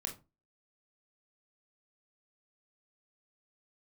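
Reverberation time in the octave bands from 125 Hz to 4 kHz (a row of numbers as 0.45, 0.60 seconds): 0.35, 0.35, 0.30, 0.25, 0.20, 0.20 seconds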